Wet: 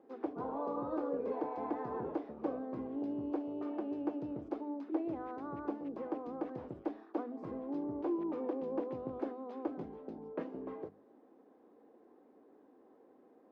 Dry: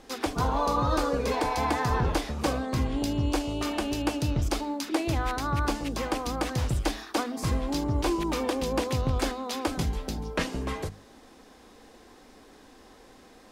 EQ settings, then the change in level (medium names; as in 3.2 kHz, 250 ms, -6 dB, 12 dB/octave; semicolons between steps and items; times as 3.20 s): ladder band-pass 420 Hz, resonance 25%; +3.0 dB